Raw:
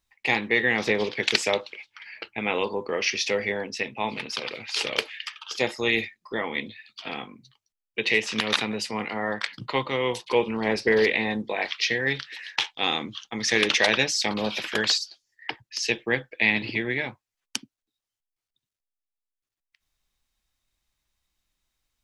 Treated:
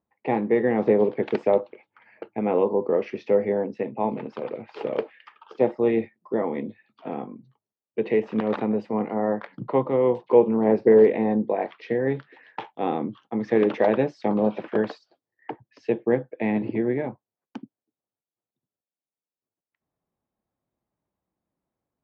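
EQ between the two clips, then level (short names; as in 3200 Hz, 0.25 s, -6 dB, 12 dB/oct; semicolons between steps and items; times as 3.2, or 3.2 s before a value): Butterworth band-pass 320 Hz, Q 0.53; +7.0 dB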